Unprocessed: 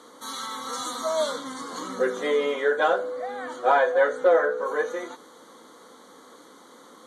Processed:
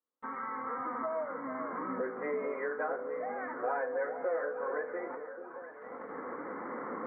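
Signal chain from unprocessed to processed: recorder AGC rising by 7.4 dB/s; steep low-pass 2200 Hz 72 dB/oct; gate -40 dBFS, range -48 dB; compressor 2.5:1, threshold -39 dBFS, peak gain reduction 16 dB; echo with dull and thin repeats by turns 0.439 s, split 900 Hz, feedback 72%, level -8 dB

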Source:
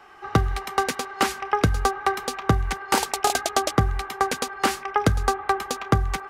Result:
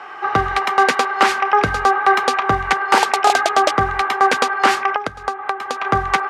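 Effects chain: 4.9–5.85 compressor 16:1, threshold -31 dBFS, peak gain reduction 18 dB; band-pass 1200 Hz, Q 0.55; maximiser +16.5 dB; gain -1 dB

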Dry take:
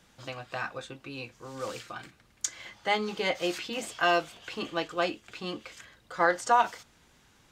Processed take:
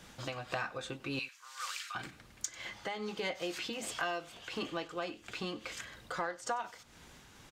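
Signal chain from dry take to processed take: 1.19–1.95 HPF 1300 Hz 24 dB/oct; compressor 5:1, threshold -40 dBFS, peak gain reduction 20 dB; in parallel at -9.5 dB: soft clip -37.5 dBFS, distortion -12 dB; on the sum: echo 95 ms -20 dB; noise-modulated level, depth 55%; gain +5 dB

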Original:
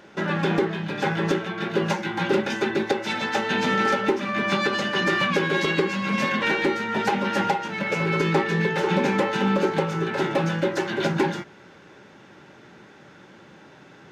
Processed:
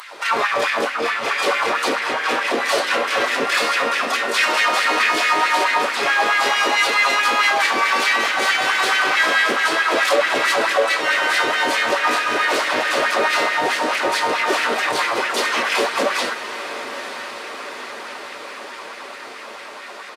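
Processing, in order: RIAA curve recording; comb 6.1 ms, depth 59%; dynamic EQ 1400 Hz, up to -4 dB, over -34 dBFS, Q 1.3; in parallel at -1 dB: negative-ratio compressor -27 dBFS, ratio -0.5; on the sum: harmoniser -4 st -8 dB, +5 st -9 dB, +12 st -8 dB; hard clip -16 dBFS, distortion -14 dB; wide varispeed 0.7×; LFO high-pass sine 4.6 Hz 390–2000 Hz; diffused feedback echo 0.922 s, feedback 68%, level -12 dB

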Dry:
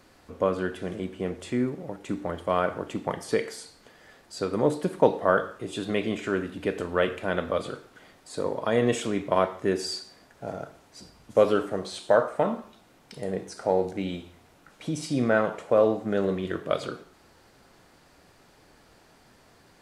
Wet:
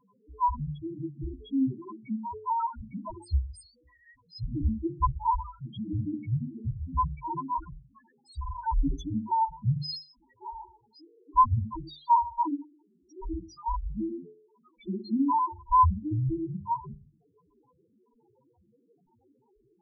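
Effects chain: band inversion scrambler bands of 500 Hz; loudest bins only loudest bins 1; notches 50/100/150/200/250/300/350/400/450/500 Hz; gain +7 dB

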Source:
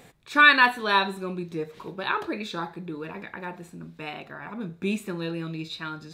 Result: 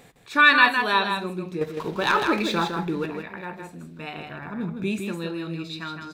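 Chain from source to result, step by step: 1.61–3.06 sample leveller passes 2; 4.18–4.84 low shelf 220 Hz +8.5 dB; echo 0.159 s -5.5 dB

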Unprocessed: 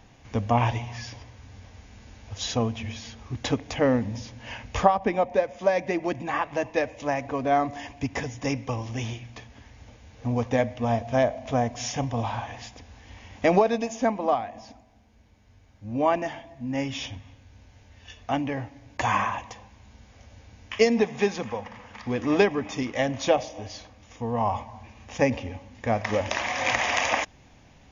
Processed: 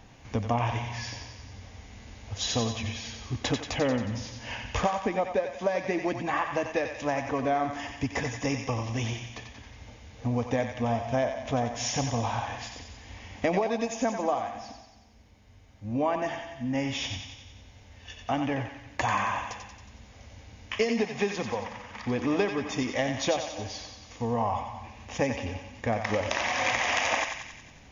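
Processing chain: compressor 3:1, threshold -26 dBFS, peak gain reduction 10.5 dB; on a send: thinning echo 91 ms, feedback 63%, high-pass 890 Hz, level -5 dB; on the sum: gain +1 dB

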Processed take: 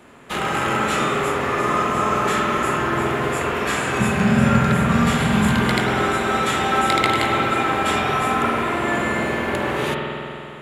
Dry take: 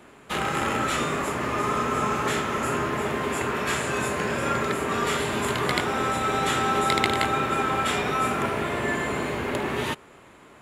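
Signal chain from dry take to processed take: 4–5.6 resonant low shelf 260 Hz +8 dB, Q 3; spring tank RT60 2.8 s, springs 47 ms, chirp 60 ms, DRR -0.5 dB; gain +2 dB

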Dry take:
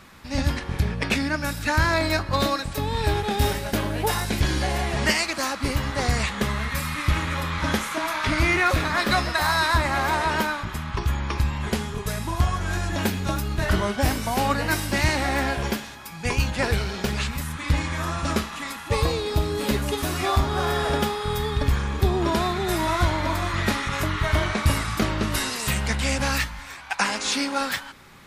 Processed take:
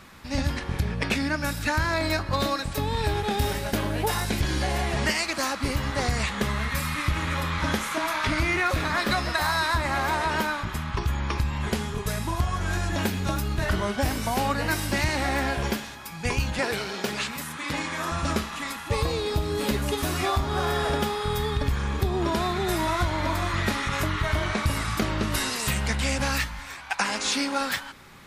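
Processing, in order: 16.59–18.12 HPF 230 Hz 12 dB/oct; compressor 4:1, threshold -21 dBFS, peak gain reduction 6 dB

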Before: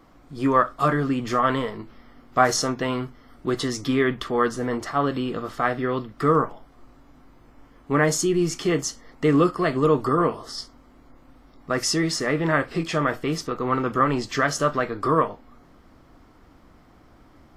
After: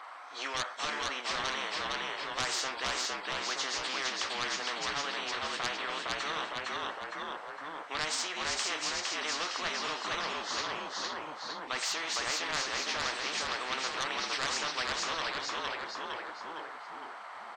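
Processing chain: nonlinear frequency compression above 3200 Hz 1.5:1; HPF 870 Hz 24 dB/oct; high shelf 2600 Hz -11.5 dB; soft clip -17 dBFS, distortion -17 dB; on a send: frequency-shifting echo 0.459 s, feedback 36%, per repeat -52 Hz, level -3.5 dB; on the sum: spectral compressor 4:1

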